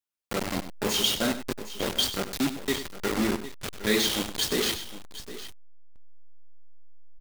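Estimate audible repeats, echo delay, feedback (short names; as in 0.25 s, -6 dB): 2, 97 ms, no steady repeat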